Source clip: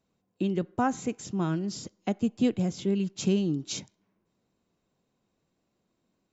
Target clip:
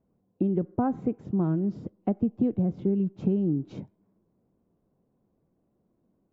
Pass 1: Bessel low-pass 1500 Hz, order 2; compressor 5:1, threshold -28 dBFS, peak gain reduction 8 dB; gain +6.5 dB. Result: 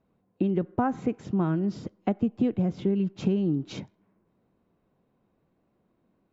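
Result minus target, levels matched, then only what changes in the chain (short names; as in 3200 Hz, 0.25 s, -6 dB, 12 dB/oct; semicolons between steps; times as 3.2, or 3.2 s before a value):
2000 Hz band +10.0 dB
change: Bessel low-pass 570 Hz, order 2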